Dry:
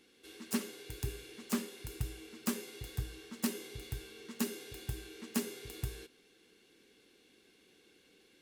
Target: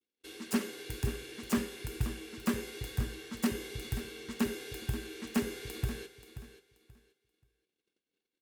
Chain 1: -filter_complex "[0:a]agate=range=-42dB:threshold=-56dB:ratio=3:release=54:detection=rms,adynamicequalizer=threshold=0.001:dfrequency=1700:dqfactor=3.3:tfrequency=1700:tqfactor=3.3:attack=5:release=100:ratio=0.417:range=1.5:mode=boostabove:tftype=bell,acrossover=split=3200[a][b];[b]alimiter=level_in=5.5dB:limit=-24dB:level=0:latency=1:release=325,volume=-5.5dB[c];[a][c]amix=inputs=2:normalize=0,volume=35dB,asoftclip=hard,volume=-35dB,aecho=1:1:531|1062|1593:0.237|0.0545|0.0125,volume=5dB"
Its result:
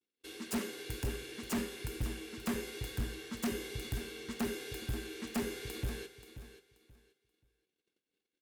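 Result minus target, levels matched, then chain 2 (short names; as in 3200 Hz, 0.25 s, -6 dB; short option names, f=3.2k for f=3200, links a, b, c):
overloaded stage: distortion +12 dB
-filter_complex "[0:a]agate=range=-42dB:threshold=-56dB:ratio=3:release=54:detection=rms,adynamicequalizer=threshold=0.001:dfrequency=1700:dqfactor=3.3:tfrequency=1700:tqfactor=3.3:attack=5:release=100:ratio=0.417:range=1.5:mode=boostabove:tftype=bell,acrossover=split=3200[a][b];[b]alimiter=level_in=5.5dB:limit=-24dB:level=0:latency=1:release=325,volume=-5.5dB[c];[a][c]amix=inputs=2:normalize=0,volume=26.5dB,asoftclip=hard,volume=-26.5dB,aecho=1:1:531|1062|1593:0.237|0.0545|0.0125,volume=5dB"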